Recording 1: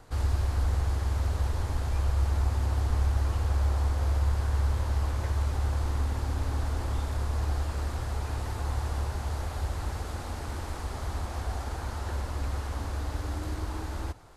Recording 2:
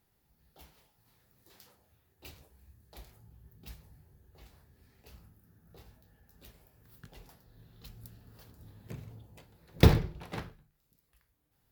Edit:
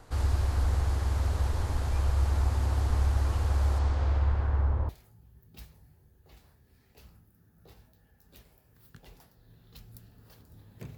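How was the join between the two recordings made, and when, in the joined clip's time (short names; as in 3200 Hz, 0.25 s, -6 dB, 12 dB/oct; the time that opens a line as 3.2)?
recording 1
3.78–4.89 LPF 6700 Hz -> 1000 Hz
4.89 switch to recording 2 from 2.98 s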